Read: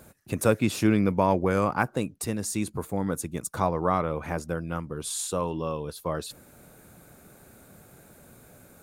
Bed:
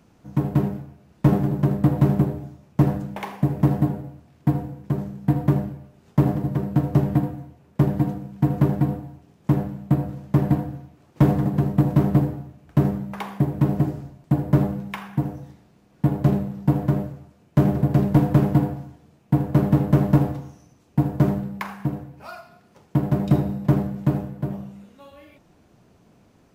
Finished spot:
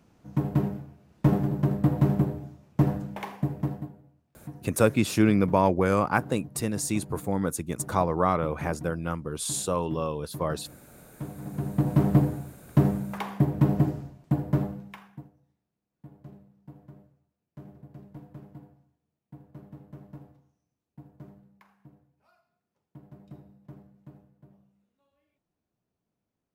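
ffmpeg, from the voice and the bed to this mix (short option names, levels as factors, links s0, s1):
-filter_complex "[0:a]adelay=4350,volume=1.12[s0];[1:a]volume=5.31,afade=t=out:st=3.24:d=0.67:silence=0.149624,afade=t=in:st=11.37:d=0.77:silence=0.112202,afade=t=out:st=13.88:d=1.42:silence=0.0473151[s1];[s0][s1]amix=inputs=2:normalize=0"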